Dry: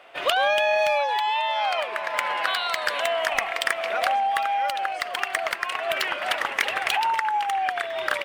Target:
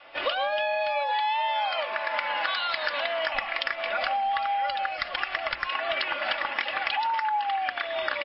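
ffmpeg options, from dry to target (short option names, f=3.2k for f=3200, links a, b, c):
-filter_complex "[0:a]bandreject=f=60:t=h:w=6,bandreject=f=120:t=h:w=6,bandreject=f=180:t=h:w=6,bandreject=f=240:t=h:w=6,bandreject=f=300:t=h:w=6,bandreject=f=360:t=h:w=6,bandreject=f=420:t=h:w=6,bandreject=f=480:t=h:w=6,bandreject=f=540:t=h:w=6,bandreject=f=600:t=h:w=6,asettb=1/sr,asplit=3[a][b][c];[a]atrim=end=3.124[d];[b]atrim=start=3.12:end=5.68,asetpts=PTS-STARTPTS,afade=t=in:d=0.004:c=qsin,afade=t=out:st=2.556:d=0.004:c=qsin,asubboost=boost=5:cutoff=150[e];[c]atrim=start=5.676[f];[d][e]acrossfade=d=0.004:c1=hsin:c2=qsin[g];[g][f]acrossfade=d=0.004:c1=qsin:c2=hsin,aecho=1:1:3.5:0.58,adynamicequalizer=threshold=0.01:dfrequency=420:dqfactor=1.8:tfrequency=420:tqfactor=1.8:attack=5:release=100:ratio=0.375:range=2.5:mode=cutabove:tftype=bell,acompressor=threshold=-23dB:ratio=12,acrusher=bits=9:mix=0:aa=0.000001" -ar 12000 -c:a libmp3lame -b:a 24k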